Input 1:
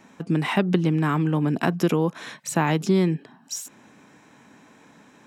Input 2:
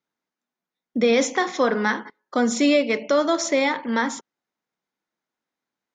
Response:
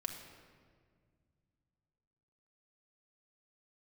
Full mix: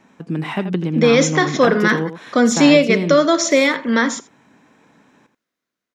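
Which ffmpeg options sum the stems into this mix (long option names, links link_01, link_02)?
-filter_complex "[0:a]highshelf=frequency=6000:gain=-7.5,volume=-1dB,asplit=2[link_01][link_02];[link_02]volume=-10.5dB[link_03];[1:a]equalizer=frequency=850:width_type=o:width=0.22:gain=-14.5,dynaudnorm=framelen=410:gausssize=5:maxgain=5dB,volume=2.5dB,asplit=2[link_04][link_05];[link_05]volume=-20dB[link_06];[link_03][link_06]amix=inputs=2:normalize=0,aecho=0:1:83:1[link_07];[link_01][link_04][link_07]amix=inputs=3:normalize=0"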